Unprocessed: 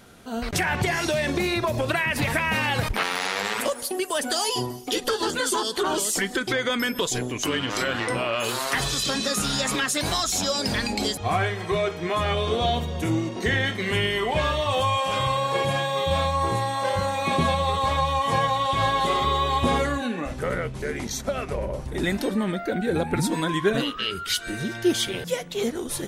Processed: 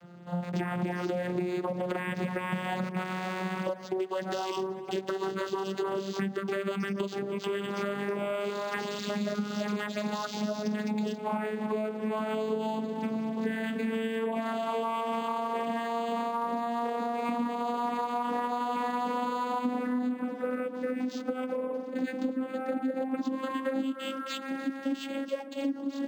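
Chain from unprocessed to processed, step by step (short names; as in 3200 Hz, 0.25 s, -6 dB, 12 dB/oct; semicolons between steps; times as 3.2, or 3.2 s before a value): vocoder on a gliding note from F3, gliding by +8 st; analogue delay 0.294 s, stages 4096, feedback 53%, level -15.5 dB; compressor 6:1, threshold -28 dBFS, peak gain reduction 13 dB; decimation joined by straight lines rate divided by 4×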